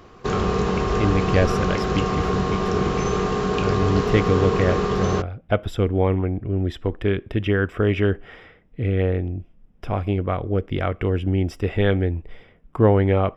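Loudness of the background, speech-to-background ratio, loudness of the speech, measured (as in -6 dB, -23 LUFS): -23.0 LUFS, -0.5 dB, -23.5 LUFS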